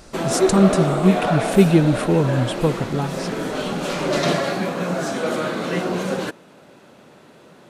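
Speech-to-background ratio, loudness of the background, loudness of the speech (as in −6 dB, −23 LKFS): 3.5 dB, −23.0 LKFS, −19.5 LKFS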